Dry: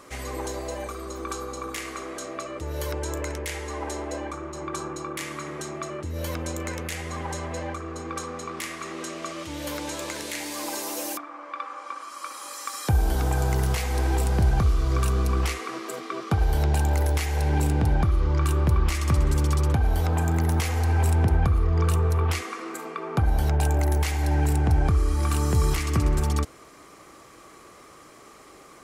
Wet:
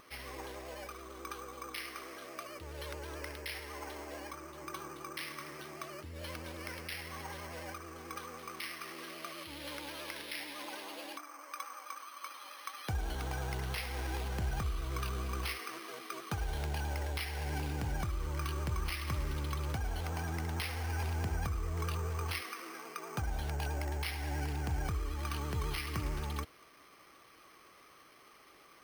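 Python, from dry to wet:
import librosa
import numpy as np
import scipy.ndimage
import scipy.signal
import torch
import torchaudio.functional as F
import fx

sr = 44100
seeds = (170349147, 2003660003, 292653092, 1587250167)

y = librosa.effects.preemphasis(x, coef=0.9, zi=[0.0])
y = fx.vibrato(y, sr, rate_hz=9.2, depth_cents=69.0)
y = np.repeat(scipy.signal.resample_poly(y, 1, 6), 6)[:len(y)]
y = y * 10.0 ** (5.0 / 20.0)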